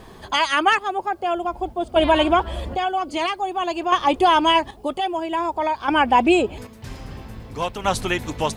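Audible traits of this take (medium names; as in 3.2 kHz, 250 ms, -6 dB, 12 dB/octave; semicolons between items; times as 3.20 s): chopped level 0.51 Hz, depth 60%, duty 40%; a quantiser's noise floor 12-bit, dither triangular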